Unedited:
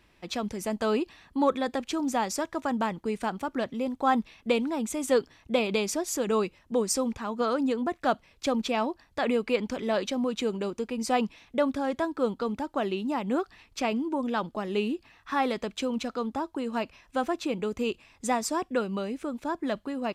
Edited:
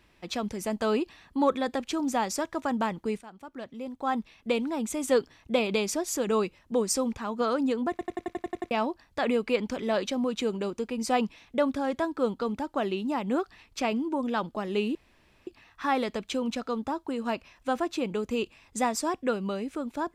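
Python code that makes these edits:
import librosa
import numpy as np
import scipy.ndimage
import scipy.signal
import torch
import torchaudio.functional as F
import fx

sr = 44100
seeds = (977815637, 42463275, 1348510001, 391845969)

y = fx.edit(x, sr, fx.fade_in_from(start_s=3.21, length_s=1.7, floor_db=-19.0),
    fx.stutter_over(start_s=7.9, slice_s=0.09, count=9),
    fx.insert_room_tone(at_s=14.95, length_s=0.52), tone=tone)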